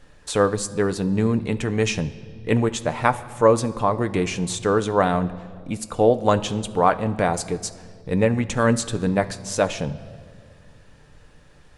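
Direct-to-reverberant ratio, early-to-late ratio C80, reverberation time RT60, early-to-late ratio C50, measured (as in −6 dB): 9.0 dB, 17.5 dB, 2.0 s, 16.0 dB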